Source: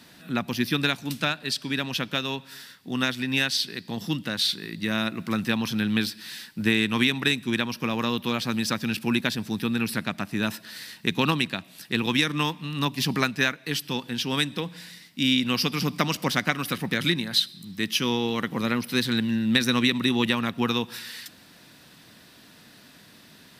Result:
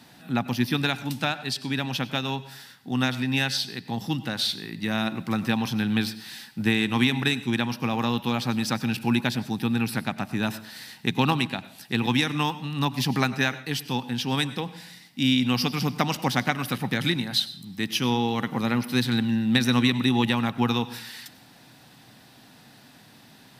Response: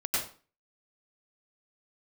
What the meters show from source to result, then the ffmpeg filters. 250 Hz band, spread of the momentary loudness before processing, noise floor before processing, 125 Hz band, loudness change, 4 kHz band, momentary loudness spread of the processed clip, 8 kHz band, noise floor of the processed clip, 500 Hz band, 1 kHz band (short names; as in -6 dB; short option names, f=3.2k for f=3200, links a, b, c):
+1.0 dB, 9 LU, -52 dBFS, +3.5 dB, 0.0 dB, -2.0 dB, 9 LU, -2.0 dB, -52 dBFS, -1.0 dB, +2.5 dB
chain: -filter_complex "[0:a]equalizer=f=125:t=o:w=0.33:g=9,equalizer=f=250:t=o:w=0.33:g=4,equalizer=f=800:t=o:w=0.33:g=11,asplit=2[a][b];[1:a]atrim=start_sample=2205[c];[b][c]afir=irnorm=-1:irlink=0,volume=-22dB[d];[a][d]amix=inputs=2:normalize=0,volume=-2.5dB"